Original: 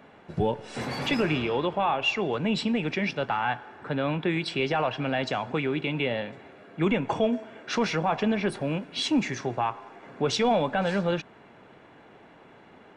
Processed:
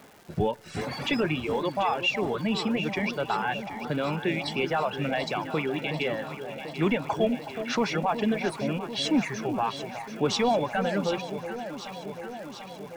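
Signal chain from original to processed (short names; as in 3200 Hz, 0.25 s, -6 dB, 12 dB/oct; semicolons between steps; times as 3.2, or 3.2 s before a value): reverb removal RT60 1.6 s; crackle 460/s -43 dBFS; echo with dull and thin repeats by turns 0.37 s, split 850 Hz, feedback 83%, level -9 dB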